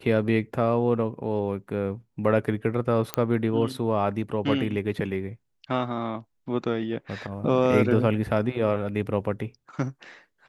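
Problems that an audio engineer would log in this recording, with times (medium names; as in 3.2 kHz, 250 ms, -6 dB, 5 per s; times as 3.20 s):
3.14 s: pop -9 dBFS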